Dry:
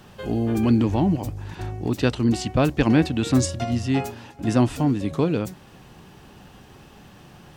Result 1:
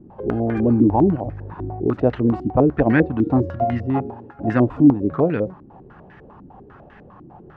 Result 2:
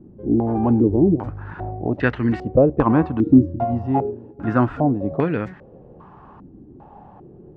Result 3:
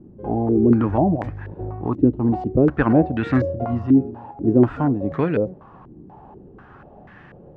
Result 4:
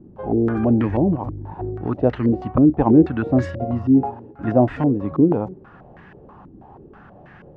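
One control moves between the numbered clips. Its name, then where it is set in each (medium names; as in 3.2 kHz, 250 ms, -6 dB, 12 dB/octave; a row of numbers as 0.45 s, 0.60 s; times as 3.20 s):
step-sequenced low-pass, rate: 10 Hz, 2.5 Hz, 4.1 Hz, 6.2 Hz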